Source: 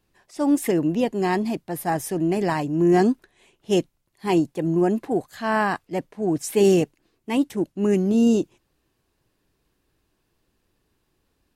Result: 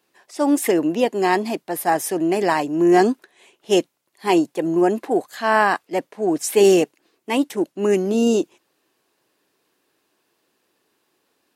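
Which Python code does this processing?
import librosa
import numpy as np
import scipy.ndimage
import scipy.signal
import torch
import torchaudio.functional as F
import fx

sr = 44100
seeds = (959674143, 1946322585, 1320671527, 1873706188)

y = scipy.signal.sosfilt(scipy.signal.butter(2, 340.0, 'highpass', fs=sr, output='sos'), x)
y = F.gain(torch.from_numpy(y), 6.0).numpy()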